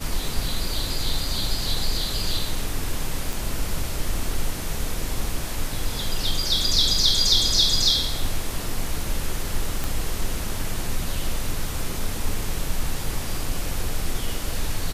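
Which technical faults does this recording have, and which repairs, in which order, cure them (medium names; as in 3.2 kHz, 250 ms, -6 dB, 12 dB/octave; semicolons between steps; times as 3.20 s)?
3.33 s: pop
9.84 s: pop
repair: de-click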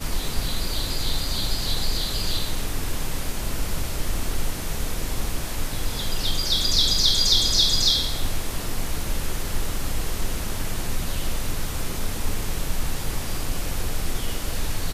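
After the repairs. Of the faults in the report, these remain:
nothing left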